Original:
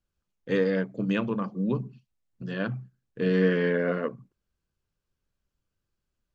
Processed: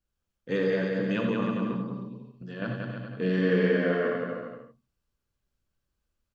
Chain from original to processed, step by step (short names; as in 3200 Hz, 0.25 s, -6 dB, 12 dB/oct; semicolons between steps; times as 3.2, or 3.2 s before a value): 1.67–2.62 compressor 2:1, threshold -38 dBFS, peak gain reduction 9 dB; bouncing-ball echo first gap 0.18 s, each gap 0.75×, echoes 5; non-linear reverb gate 0.11 s rising, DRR 3.5 dB; gain -3 dB